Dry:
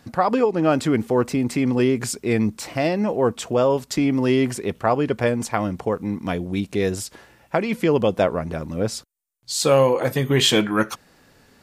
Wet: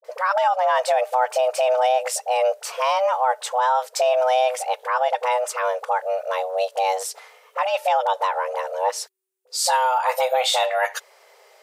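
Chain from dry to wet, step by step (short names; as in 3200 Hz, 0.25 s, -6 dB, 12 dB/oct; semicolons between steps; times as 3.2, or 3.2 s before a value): limiter -12.5 dBFS, peak gain reduction 8.5 dB; frequency shift +380 Hz; dispersion highs, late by 46 ms, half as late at 620 Hz; gain +1.5 dB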